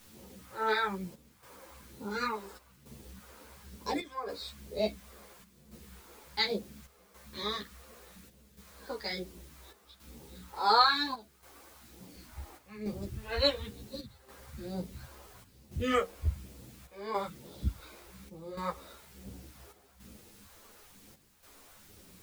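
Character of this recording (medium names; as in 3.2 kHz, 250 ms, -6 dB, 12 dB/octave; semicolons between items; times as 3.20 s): phasing stages 2, 1.1 Hz, lowest notch 130–1600 Hz; a quantiser's noise floor 10-bit, dither triangular; chopped level 0.7 Hz, depth 65%, duty 80%; a shimmering, thickened sound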